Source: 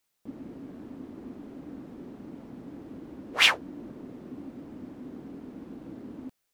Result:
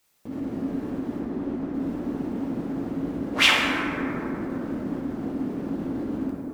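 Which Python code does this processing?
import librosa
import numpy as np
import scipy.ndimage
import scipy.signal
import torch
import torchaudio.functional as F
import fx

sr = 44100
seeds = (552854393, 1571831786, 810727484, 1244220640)

p1 = fx.high_shelf(x, sr, hz=5000.0, db=-9.0, at=(1.19, 1.74))
p2 = fx.over_compress(p1, sr, threshold_db=-43.0, ratio=-1.0)
p3 = p1 + (p2 * librosa.db_to_amplitude(-1.0))
y = fx.rev_plate(p3, sr, seeds[0], rt60_s=3.2, hf_ratio=0.3, predelay_ms=0, drr_db=-3.5)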